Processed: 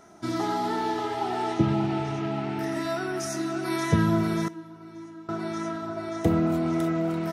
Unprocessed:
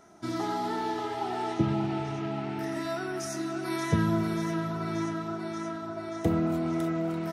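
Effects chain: 4.48–5.29 resonator 320 Hz, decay 0.47 s, harmonics odd, mix 90%; gain +3.5 dB

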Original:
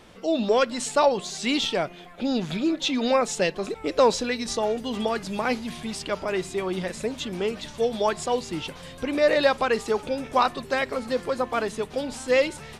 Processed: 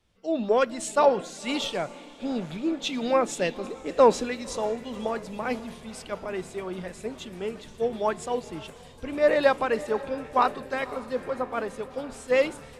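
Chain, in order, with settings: dynamic EQ 4600 Hz, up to -7 dB, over -45 dBFS, Q 1; diffused feedback echo 0.536 s, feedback 57%, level -13.5 dB; three-band expander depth 70%; gain -3 dB

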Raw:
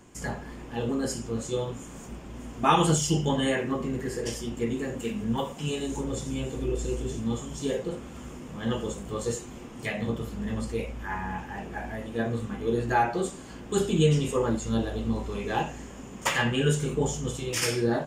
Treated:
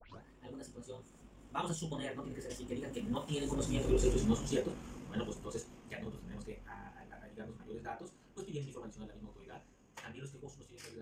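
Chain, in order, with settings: tape start at the beginning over 0.37 s; Doppler pass-by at 6.69, 13 m/s, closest 8.7 m; granular stretch 0.61×, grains 41 ms; gain +1 dB

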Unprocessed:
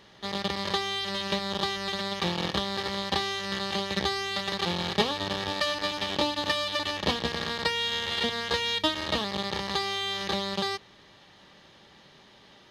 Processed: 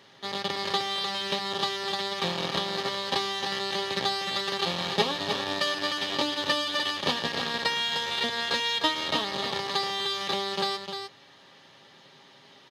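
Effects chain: HPF 110 Hz 12 dB/oct; low shelf 330 Hz -3.5 dB; comb 7.4 ms, depth 38%; echo 0.304 s -6.5 dB

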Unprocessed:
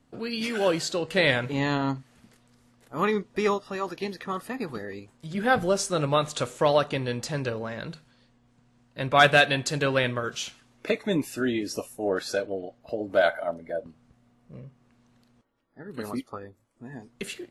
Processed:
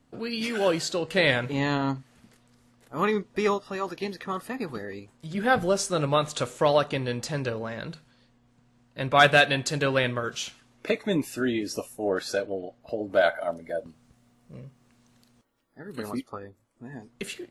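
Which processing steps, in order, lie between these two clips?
13.41–16 high shelf 4200 Hz +11 dB

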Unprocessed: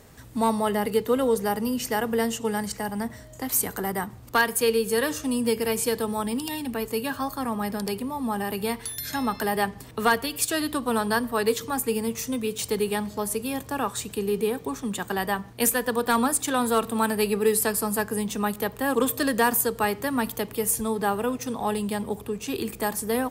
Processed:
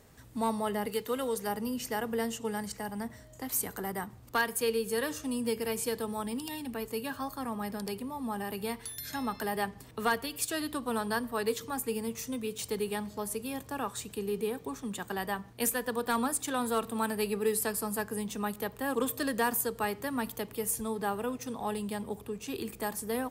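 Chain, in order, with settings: 0.9–1.47 tilt shelf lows -4.5 dB; gain -7.5 dB

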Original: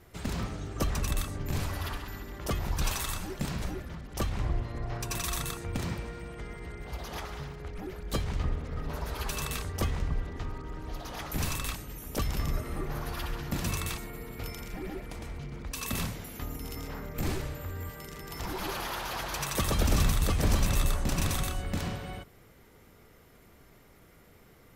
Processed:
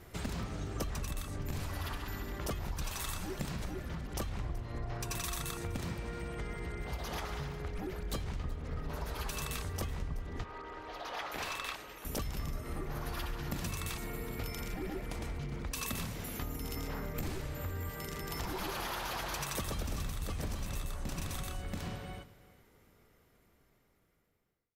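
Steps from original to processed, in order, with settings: ending faded out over 6.26 s; 10.44–12.05 three-band isolator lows -21 dB, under 400 Hz, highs -14 dB, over 4600 Hz; compressor 6:1, threshold -37 dBFS, peak gain reduction 13.5 dB; echo 0.376 s -19.5 dB; gain +2.5 dB

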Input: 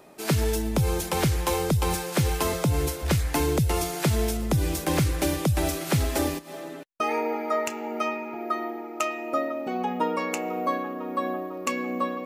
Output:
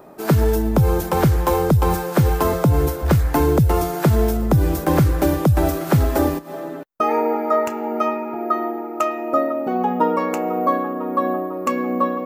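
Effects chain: band shelf 4800 Hz -11 dB 2.8 oct; gain +8 dB

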